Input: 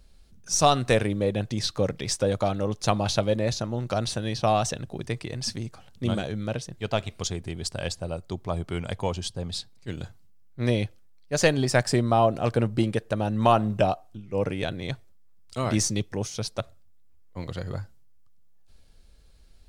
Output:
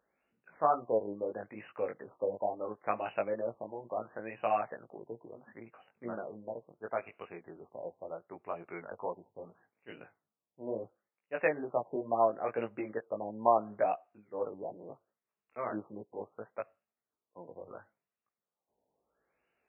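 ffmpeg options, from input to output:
ffmpeg -i in.wav -af "flanger=delay=17:depth=2.9:speed=2.3,highpass=440,lowpass=5800,afftfilt=real='re*lt(b*sr/1024,1000*pow(3000/1000,0.5+0.5*sin(2*PI*0.73*pts/sr)))':imag='im*lt(b*sr/1024,1000*pow(3000/1000,0.5+0.5*sin(2*PI*0.73*pts/sr)))':win_size=1024:overlap=0.75,volume=-3dB" out.wav

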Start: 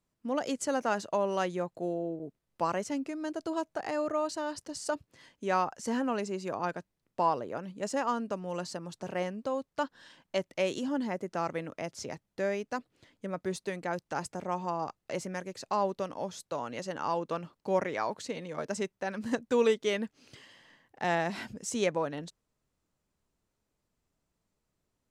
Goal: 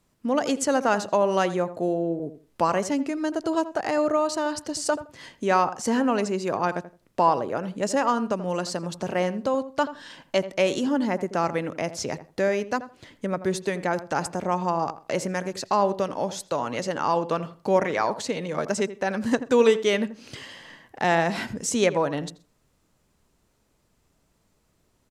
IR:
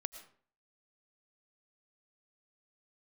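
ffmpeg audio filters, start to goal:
-filter_complex "[1:a]atrim=start_sample=2205,atrim=end_sample=3528,asetrate=26901,aresample=44100[link_01];[0:a][link_01]afir=irnorm=-1:irlink=0,asplit=2[link_02][link_03];[link_03]acompressor=threshold=-46dB:ratio=6,volume=2dB[link_04];[link_02][link_04]amix=inputs=2:normalize=0,asplit=2[link_05][link_06];[link_06]adelay=83,lowpass=frequency=1400:poles=1,volume=-12.5dB,asplit=2[link_07][link_08];[link_08]adelay=83,lowpass=frequency=1400:poles=1,volume=0.21,asplit=2[link_09][link_10];[link_10]adelay=83,lowpass=frequency=1400:poles=1,volume=0.21[link_11];[link_05][link_07][link_09][link_11]amix=inputs=4:normalize=0,volume=6dB"

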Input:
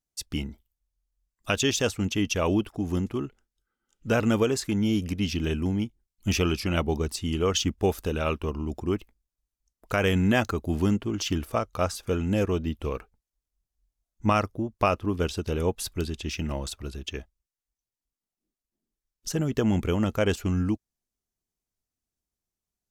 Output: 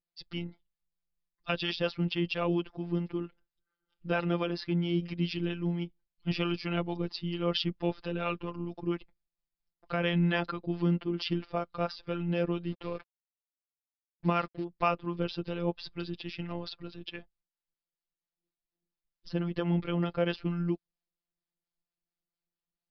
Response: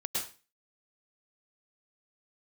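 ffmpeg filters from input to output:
-filter_complex "[0:a]asettb=1/sr,asplit=3[link_01][link_02][link_03];[link_01]atrim=end=12.674[link_04];[link_02]atrim=start=12.67:end=14.64,asetpts=PTS-STARTPTS,afade=type=in:duration=0.004:curve=qsin,afade=type=out:start_time=1.966:duration=0.004:curve=qsin,acrusher=bits=6:mix=0:aa=0.5[link_05];[link_03]atrim=start=14.636[link_06];[link_04][link_05]acrossfade=duration=0.004:curve1=hsin:curve2=qsin[link_07];[link_07][link_06]acrossfade=duration=0.004:curve1=qsin:curve2=hsin,aresample=11025,aresample=44100,afftfilt=real='hypot(re,im)*cos(PI*b)':imag='0':win_size=1024:overlap=0.75,acrossover=split=600[link_08][link_09];[link_08]aeval=exprs='val(0)*(1-0.5/2+0.5/2*cos(2*PI*4.4*n/s))':channel_layout=same[link_10];[link_09]aeval=exprs='val(0)*(1-0.5/2-0.5/2*cos(2*PI*4.4*n/s))':channel_layout=same[link_11];[link_10][link_11]amix=inputs=2:normalize=0,volume=1dB"

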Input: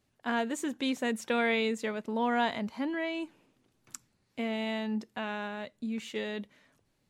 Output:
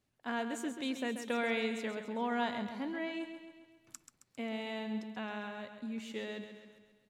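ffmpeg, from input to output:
ffmpeg -i in.wav -af "aecho=1:1:134|268|402|536|670|804:0.355|0.192|0.103|0.0559|0.0302|0.0163,volume=-6dB" out.wav

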